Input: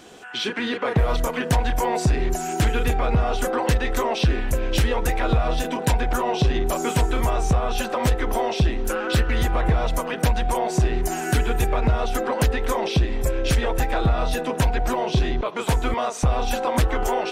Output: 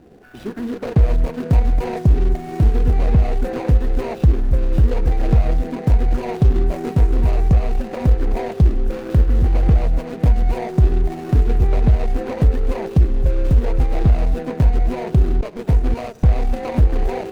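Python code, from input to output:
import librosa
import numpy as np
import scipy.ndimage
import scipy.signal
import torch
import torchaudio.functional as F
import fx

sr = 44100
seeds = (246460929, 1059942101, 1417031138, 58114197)

y = scipy.ndimage.median_filter(x, 41, mode='constant')
y = fx.low_shelf(y, sr, hz=200.0, db=8.0)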